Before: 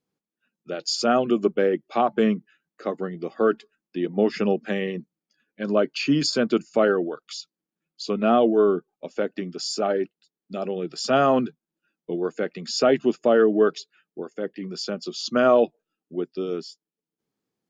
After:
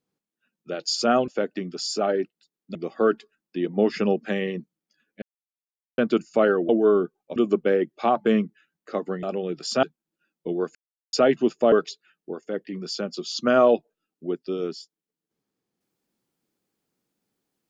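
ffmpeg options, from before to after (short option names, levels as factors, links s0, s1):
-filter_complex "[0:a]asplit=12[s0][s1][s2][s3][s4][s5][s6][s7][s8][s9][s10][s11];[s0]atrim=end=1.282[s12];[s1]atrim=start=9.088:end=10.562[s13];[s2]atrim=start=3.148:end=5.62,asetpts=PTS-STARTPTS,afade=t=out:st=2.468:d=0.004:c=hsin[s14];[s3]atrim=start=5.62:end=6.38,asetpts=PTS-STARTPTS,volume=0[s15];[s4]atrim=start=6.38:end=7.092,asetpts=PTS-STARTPTS,afade=t=in:d=0.004:c=hsin[s16];[s5]atrim=start=8.418:end=9.092[s17];[s6]atrim=start=1.278:end=3.152[s18];[s7]atrim=start=10.558:end=11.162[s19];[s8]atrim=start=11.458:end=12.38,asetpts=PTS-STARTPTS,afade=t=out:st=0.918:d=0.004:c=hsin[s20];[s9]atrim=start=12.38:end=12.76,asetpts=PTS-STARTPTS,volume=0[s21];[s10]atrim=start=12.76:end=13.352,asetpts=PTS-STARTPTS,afade=t=in:d=0.004:c=hsin[s22];[s11]atrim=start=13.608[s23];[s12][s13]acrossfade=d=0.004:c1=hsin:c2=hsin[s24];[s14][s15][s16]concat=n=3:v=0:a=1[s25];[s24][s25]acrossfade=d=0.004:c1=hsin:c2=hsin[s26];[s26][s17]acrossfade=d=0.004:c1=hsin:c2=hsin[s27];[s27][s18]acrossfade=d=0.004:c1=hsin:c2=hsin[s28];[s28][s19]acrossfade=d=0.004:c1=hsin:c2=hsin[s29];[s20][s21][s22]concat=n=3:v=0:a=1[s30];[s29][s30]acrossfade=d=0.004:c1=hsin:c2=hsin[s31];[s31][s23]acrossfade=d=0.004:c1=hsin:c2=hsin"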